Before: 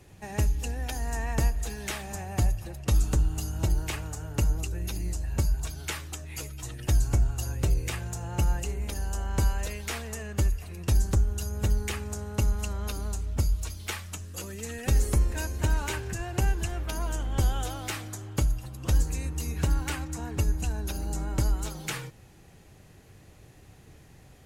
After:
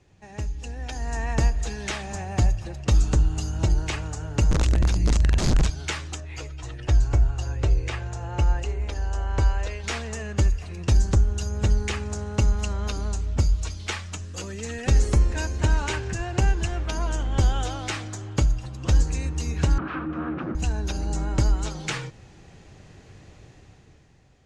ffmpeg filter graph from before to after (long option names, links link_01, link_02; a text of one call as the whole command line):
ffmpeg -i in.wav -filter_complex "[0:a]asettb=1/sr,asplit=3[link_01][link_02][link_03];[link_01]atrim=end=4.514[link_04];[link_02]atrim=start=4.51:end=5.7,asetpts=PTS-STARTPTS,afade=type=in:duration=0.004:curve=qsin,afade=type=out:start_time=1.186:duration=0.004:curve=qsin,bandreject=frequency=50:width_type=h:width=6,bandreject=frequency=100:width_type=h:width=6,bandreject=frequency=150:width_type=h:width=6,bandreject=frequency=200:width_type=h:width=6,bandreject=frequency=250:width_type=h:width=6,bandreject=frequency=300:width_type=h:width=6,bandreject=frequency=350:width_type=h:width=6,bandreject=frequency=400:width_type=h:width=6,aeval=exprs='(mod(20*val(0)+1,2)-1)/20':channel_layout=same,lowshelf=frequency=160:gain=11.5[link_05];[link_03]atrim=start=5.696[link_06];[link_04][link_05]acrossfade=duration=0.004:curve1=hsin:curve2=qsin[link_07];[link_07][link_06]acrossfade=duration=0.004:curve1=qsin:curve2=hsin,asettb=1/sr,asplit=3[link_08][link_09][link_10];[link_08]atrim=end=6.204[link_11];[link_09]atrim=start=6.2:end=9.84,asetpts=PTS-STARTPTS,afade=type=in:duration=0.004:curve=qsin,afade=type=out:start_time=3.636:duration=0.004:curve=qsin,lowpass=frequency=2900:poles=1,equalizer=frequency=190:width_type=o:width=0.74:gain=-11.5[link_12];[link_10]atrim=start=9.836[link_13];[link_11][link_12]acrossfade=duration=0.004:curve1=hsin:curve2=qsin[link_14];[link_14][link_13]acrossfade=duration=0.004:curve1=qsin:curve2=hsin,asettb=1/sr,asplit=3[link_15][link_16][link_17];[link_15]atrim=end=19.784[link_18];[link_16]atrim=start=19.78:end=20.55,asetpts=PTS-STARTPTS,afade=type=in:duration=0.004:curve=qsin,afade=type=out:start_time=0.766:duration=0.004:curve=qsin,acontrast=27,aeval=exprs='0.0422*(abs(mod(val(0)/0.0422+3,4)-2)-1)':channel_layout=same,highpass=130,equalizer=frequency=300:width_type=q:width=4:gain=7,equalizer=frequency=430:width_type=q:width=4:gain=-8,equalizer=frequency=630:width_type=q:width=4:gain=-7,equalizer=frequency=890:width_type=q:width=4:gain=-6,equalizer=frequency=1300:width_type=q:width=4:gain=7,equalizer=frequency=2000:width_type=q:width=4:gain=-9,lowpass=frequency=2200:width=0.5412,lowpass=frequency=2200:width=1.3066[link_19];[link_17]atrim=start=20.546[link_20];[link_18][link_19]acrossfade=duration=0.004:curve1=hsin:curve2=qsin[link_21];[link_21][link_20]acrossfade=duration=0.004:curve1=qsin:curve2=hsin,lowpass=frequency=7200:width=0.5412,lowpass=frequency=7200:width=1.3066,dynaudnorm=framelen=110:gausssize=17:maxgain=11.5dB,volume=-6dB" out.wav